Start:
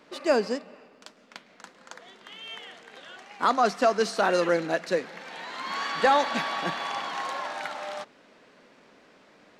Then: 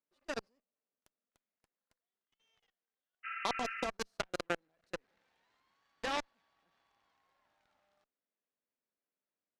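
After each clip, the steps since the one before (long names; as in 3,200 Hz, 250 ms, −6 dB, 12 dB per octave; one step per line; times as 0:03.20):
output level in coarse steps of 22 dB
harmonic generator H 3 −9 dB, 4 −37 dB, 5 −44 dB, 8 −42 dB, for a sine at −12 dBFS
healed spectral selection 0:03.27–0:03.82, 1,200–3,000 Hz after
level −3.5 dB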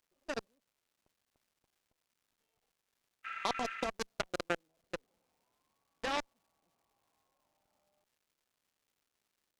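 adaptive Wiener filter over 25 samples
surface crackle 470 per second −68 dBFS
level +1 dB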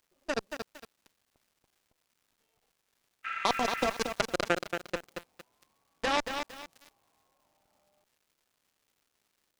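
feedback echo at a low word length 229 ms, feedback 35%, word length 8 bits, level −6 dB
level +6.5 dB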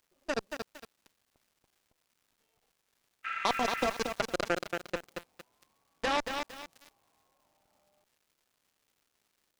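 soft clipping −14 dBFS, distortion −17 dB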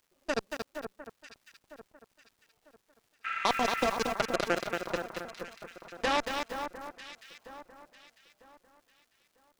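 delay that swaps between a low-pass and a high-pass 474 ms, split 1,700 Hz, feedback 55%, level −8 dB
level +1.5 dB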